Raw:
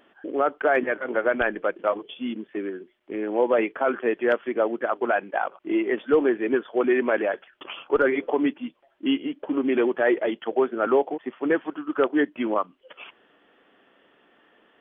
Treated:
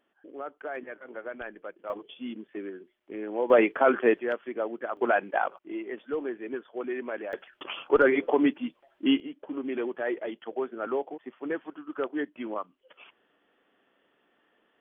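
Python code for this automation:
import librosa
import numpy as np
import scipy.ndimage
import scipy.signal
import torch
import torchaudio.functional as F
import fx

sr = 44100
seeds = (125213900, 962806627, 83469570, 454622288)

y = fx.gain(x, sr, db=fx.steps((0.0, -15.5), (1.9, -7.0), (3.5, 2.0), (4.19, -8.0), (4.97, -1.0), (5.58, -12.0), (7.33, 0.0), (9.2, -9.5)))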